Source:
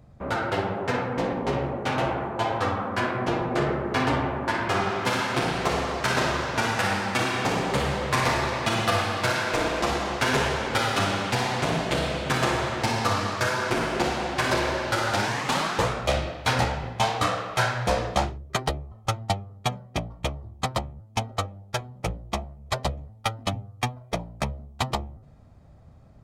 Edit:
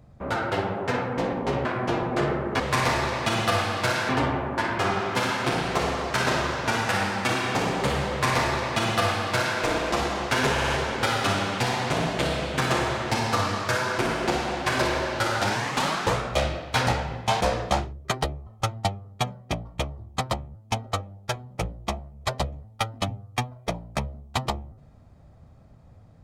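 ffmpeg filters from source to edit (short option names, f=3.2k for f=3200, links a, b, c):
-filter_complex "[0:a]asplit=8[a][b][c][d][e][f][g][h];[a]atrim=end=1.652[i];[b]atrim=start=3.038:end=3.992[j];[c]atrim=start=7.998:end=9.492[k];[d]atrim=start=3.988:end=10.482[l];[e]atrim=start=10.418:end=10.482[m];[f]atrim=start=10.418:end=10.482[n];[g]atrim=start=10.418:end=17.132[o];[h]atrim=start=17.858[p];[i][j]acrossfade=d=0.004:c1=hsin:c2=hsin[q];[q][k]acrossfade=d=0.004:c1=hsin:c2=hsin[r];[r][l]acrossfade=d=0.004:c1=hsin:c2=hsin[s];[s][m]acrossfade=d=0.004:c1=hsin:c2=hsin[t];[t][n]acrossfade=d=0.004:c1=hsin:c2=hsin[u];[u][o]acrossfade=d=0.004:c1=hsin:c2=hsin[v];[v][p]acrossfade=d=0.004:c1=hsin:c2=hsin"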